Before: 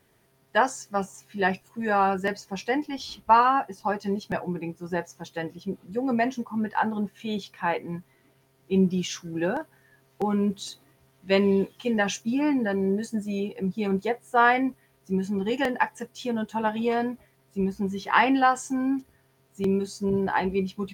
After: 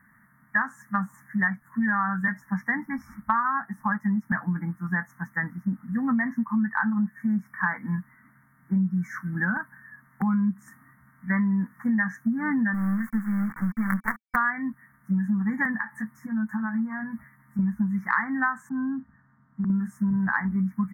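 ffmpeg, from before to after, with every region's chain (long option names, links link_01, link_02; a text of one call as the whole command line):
ffmpeg -i in.wav -filter_complex "[0:a]asettb=1/sr,asplit=3[link_01][link_02][link_03];[link_01]atrim=end=12.744[link_04];[link_02]atrim=start=12.74:end=14.36,asetpts=PTS-STARTPTS,afade=type=in:duration=0.004:curve=qsin,afade=type=out:start_time=1.616:duration=0.004:curve=qsin,bandreject=frequency=308.8:width_type=h:width=4,bandreject=frequency=617.6:width_type=h:width=4,bandreject=frequency=926.4:width_type=h:width=4,bandreject=frequency=1235.2:width_type=h:width=4,bandreject=frequency=1544:width_type=h:width=4,bandreject=frequency=1852.8:width_type=h:width=4,bandreject=frequency=2161.6:width_type=h:width=4,bandreject=frequency=2470.4:width_type=h:width=4,bandreject=frequency=2779.2:width_type=h:width=4,bandreject=frequency=3088:width_type=h:width=4,bandreject=frequency=3396.8:width_type=h:width=4,bandreject=frequency=3705.6:width_type=h:width=4,bandreject=frequency=4014.4:width_type=h:width=4,bandreject=frequency=4323.2:width_type=h:width=4,bandreject=frequency=4632:width_type=h:width=4,bandreject=frequency=4940.8:width_type=h:width=4,bandreject=frequency=5249.6:width_type=h:width=4,bandreject=frequency=5558.4:width_type=h:width=4,bandreject=frequency=5867.2:width_type=h:width=4,bandreject=frequency=6176:width_type=h:width=4,bandreject=frequency=6484.8:width_type=h:width=4,bandreject=frequency=6793.6:width_type=h:width=4,acrusher=bits=4:dc=4:mix=0:aa=0.000001[link_05];[link_03]atrim=start=14.356[link_06];[link_04][link_05]acrossfade=duration=0.004:curve1=hsin:curve2=qsin[link_07];[link_07][link_06]acrossfade=duration=0.004:curve1=qsin:curve2=hsin,asettb=1/sr,asplit=3[link_08][link_09][link_10];[link_08]atrim=end=15.754[link_11];[link_09]atrim=start=15.75:end=17.59,asetpts=PTS-STARTPTS,afade=type=in:duration=0.004:curve=qsin,afade=type=out:start_time=1.836:duration=0.004:curve=qsin,acompressor=threshold=-35dB:ratio=12:attack=3.2:release=140:knee=1:detection=peak,asplit=2[link_12][link_13];[link_13]adelay=14,volume=-5dB[link_14];[link_12][link_14]amix=inputs=2:normalize=0,atrim=end_sample=81144[link_15];[link_10]atrim=start=17.586[link_16];[link_11][link_15]acrossfade=duration=0.004:curve1=hsin:curve2=qsin[link_17];[link_17][link_16]acrossfade=duration=0.004:curve1=qsin:curve2=hsin,asettb=1/sr,asplit=3[link_18][link_19][link_20];[link_18]atrim=end=18.694[link_21];[link_19]atrim=start=18.69:end=19.7,asetpts=PTS-STARTPTS,afade=type=in:duration=0.004:curve=qsin,afade=type=out:start_time=1.006:duration=0.004:curve=qsin,lowpass=1100,acompressor=threshold=-32dB:ratio=2.5:attack=3.2:release=140:knee=1:detection=peak[link_22];[link_20]atrim=start=19.696[link_23];[link_21][link_22]acrossfade=duration=0.004:curve1=hsin:curve2=qsin[link_24];[link_24][link_23]acrossfade=duration=0.004:curve1=qsin:curve2=hsin,afftfilt=real='re*(1-between(b*sr/4096,2300,5100))':imag='im*(1-between(b*sr/4096,2300,5100))':win_size=4096:overlap=0.75,firequalizer=gain_entry='entry(100,0);entry(220,13);entry(390,-23);entry(1100,11);entry(1800,14);entry(3000,-28);entry(11000,-2)':delay=0.05:min_phase=1,acompressor=threshold=-22dB:ratio=6" out.wav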